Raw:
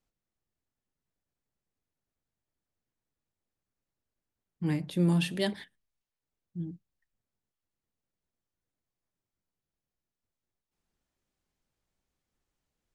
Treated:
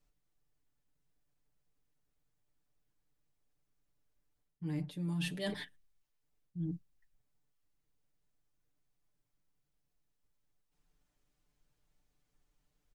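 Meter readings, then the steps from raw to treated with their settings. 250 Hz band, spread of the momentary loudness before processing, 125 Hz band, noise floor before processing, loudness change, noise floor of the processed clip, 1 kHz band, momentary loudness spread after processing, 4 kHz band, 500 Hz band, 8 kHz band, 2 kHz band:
-8.5 dB, 16 LU, -8.0 dB, under -85 dBFS, -9.0 dB, -82 dBFS, -10.0 dB, 11 LU, -6.5 dB, -9.5 dB, -6.0 dB, -5.5 dB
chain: low shelf 68 Hz +9.5 dB; comb 6.8 ms, depth 78%; reverse; compressor 12:1, threshold -34 dBFS, peak gain reduction 17 dB; reverse

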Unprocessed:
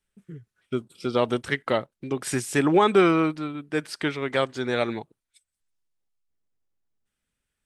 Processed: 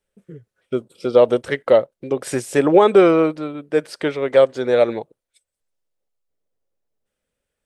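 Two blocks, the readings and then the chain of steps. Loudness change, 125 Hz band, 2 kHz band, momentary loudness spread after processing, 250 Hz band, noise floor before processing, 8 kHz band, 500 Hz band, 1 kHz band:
+7.0 dB, +0.5 dB, +0.5 dB, 14 LU, +4.0 dB, -84 dBFS, 0.0 dB, +10.0 dB, +3.5 dB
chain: bell 530 Hz +14.5 dB 0.83 oct

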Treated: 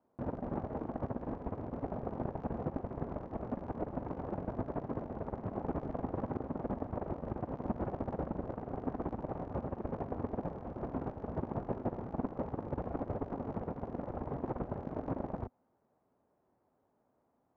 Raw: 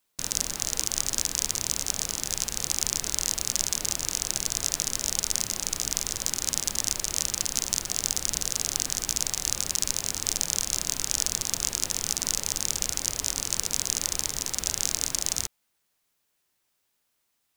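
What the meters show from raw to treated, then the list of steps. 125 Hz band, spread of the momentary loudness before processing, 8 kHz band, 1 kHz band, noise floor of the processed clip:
+2.5 dB, 2 LU, under -40 dB, +1.0 dB, -77 dBFS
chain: HPF 66 Hz; bell 250 Hz +5.5 dB 0.3 oct; limiter -8.5 dBFS, peak gain reduction 7 dB; negative-ratio compressor -36 dBFS, ratio -0.5; ladder low-pass 960 Hz, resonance 25%; gain +13 dB

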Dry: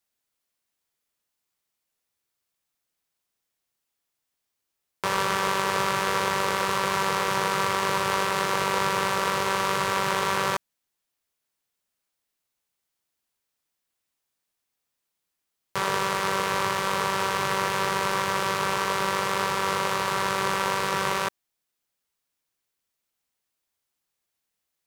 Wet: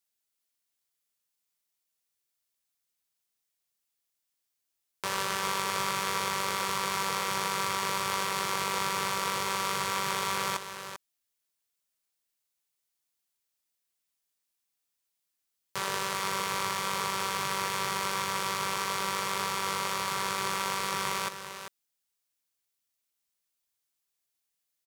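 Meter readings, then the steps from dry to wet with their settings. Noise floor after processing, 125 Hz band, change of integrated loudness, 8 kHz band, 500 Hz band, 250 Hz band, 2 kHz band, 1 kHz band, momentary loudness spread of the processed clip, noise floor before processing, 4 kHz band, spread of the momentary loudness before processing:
-82 dBFS, -7.5 dB, -5.0 dB, -0.5 dB, -9.5 dB, -7.5 dB, -6.0 dB, -6.0 dB, 5 LU, -82 dBFS, -2.5 dB, 1 LU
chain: high shelf 2700 Hz +8.5 dB; echo 0.394 s -9.5 dB; gain -8.5 dB

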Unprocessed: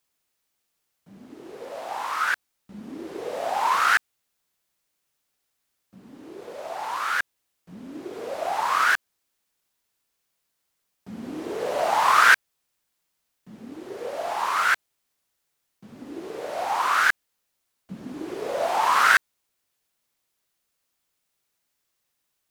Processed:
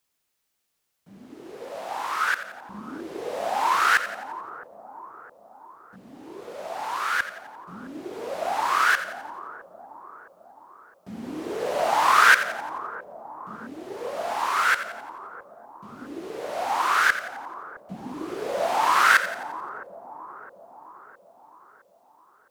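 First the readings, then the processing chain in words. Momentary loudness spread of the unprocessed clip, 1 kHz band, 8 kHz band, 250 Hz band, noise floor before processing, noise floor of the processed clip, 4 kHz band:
21 LU, +0.5 dB, +0.5 dB, +0.5 dB, -77 dBFS, -63 dBFS, +0.5 dB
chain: split-band echo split 1100 Hz, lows 0.662 s, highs 87 ms, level -12 dB

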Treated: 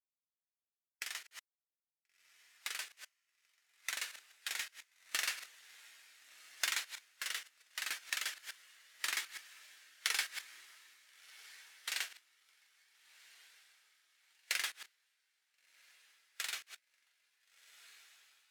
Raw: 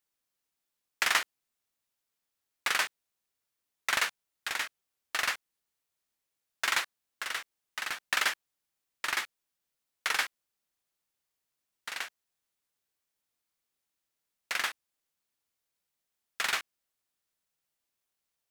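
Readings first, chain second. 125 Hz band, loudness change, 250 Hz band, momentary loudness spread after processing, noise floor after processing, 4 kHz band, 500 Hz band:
n/a, -7.5 dB, under -10 dB, 22 LU, under -85 dBFS, -5.5 dB, -14.5 dB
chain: reverse delay 0.127 s, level -14 dB; HPF 300 Hz 12 dB/oct; compressor 12:1, threshold -32 dBFS, peak gain reduction 12 dB; gate -53 dBFS, range -7 dB; bell 1100 Hz -11.5 dB 2.8 oct; on a send: diffused feedback echo 1.398 s, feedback 52%, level -12.5 dB; on the sum: vocal rider within 5 dB 2 s; high shelf 7600 Hz +4.5 dB; spectral expander 1.5:1; gain +3.5 dB

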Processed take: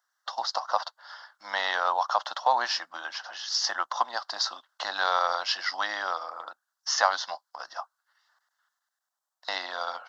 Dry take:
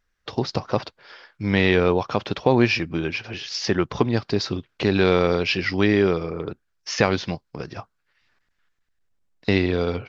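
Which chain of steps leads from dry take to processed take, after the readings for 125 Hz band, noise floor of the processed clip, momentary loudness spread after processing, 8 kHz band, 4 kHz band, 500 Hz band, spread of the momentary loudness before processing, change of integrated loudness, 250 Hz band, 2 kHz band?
under -40 dB, -85 dBFS, 15 LU, n/a, -0.5 dB, -14.5 dB, 14 LU, -6.0 dB, -33.5 dB, -4.5 dB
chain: HPF 660 Hz 24 dB/oct; fixed phaser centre 1000 Hz, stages 4; gain +4.5 dB

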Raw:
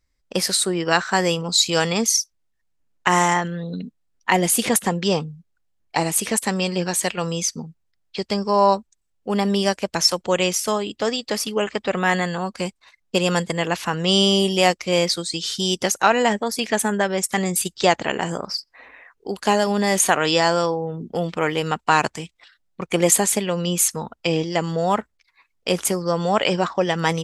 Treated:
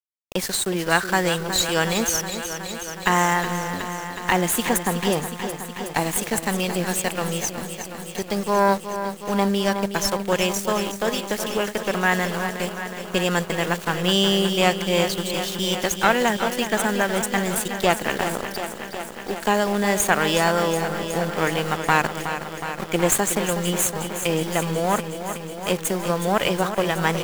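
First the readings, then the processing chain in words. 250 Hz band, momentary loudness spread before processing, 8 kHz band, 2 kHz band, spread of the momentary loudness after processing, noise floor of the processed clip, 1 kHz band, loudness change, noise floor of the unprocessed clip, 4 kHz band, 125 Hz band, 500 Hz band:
-1.0 dB, 11 LU, -3.0 dB, +1.0 dB, 10 LU, -36 dBFS, -1.0 dB, -2.0 dB, -70 dBFS, -3.0 dB, -1.0 dB, -1.5 dB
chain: one diode to ground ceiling -17.5 dBFS; thirty-one-band EQ 1600 Hz +4 dB, 5000 Hz -9 dB, 10000 Hz -6 dB; sample gate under -29.5 dBFS; high shelf 8600 Hz +4 dB; lo-fi delay 0.368 s, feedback 80%, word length 7-bit, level -9.5 dB; gain -1 dB

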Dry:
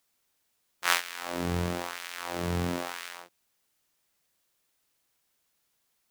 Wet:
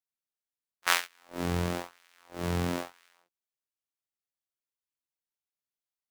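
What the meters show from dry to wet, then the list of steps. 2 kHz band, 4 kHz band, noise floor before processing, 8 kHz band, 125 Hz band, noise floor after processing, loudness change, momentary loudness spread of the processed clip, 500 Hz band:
-1.5 dB, -1.5 dB, -75 dBFS, -1.5 dB, 0.0 dB, under -85 dBFS, 0.0 dB, 17 LU, -1.0 dB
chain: gate -32 dBFS, range -23 dB

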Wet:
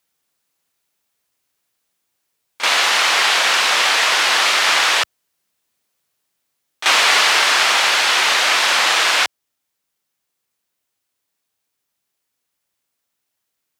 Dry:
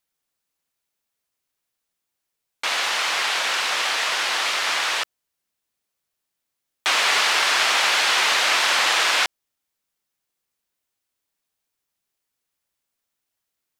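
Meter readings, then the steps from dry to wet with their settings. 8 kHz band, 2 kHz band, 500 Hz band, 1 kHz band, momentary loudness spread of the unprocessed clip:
+5.5 dB, +5.5 dB, +5.5 dB, +5.5 dB, 7 LU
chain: HPF 70 Hz; vocal rider 2 s; on a send: reverse echo 35 ms -12 dB; on the sum: gain +5.5 dB

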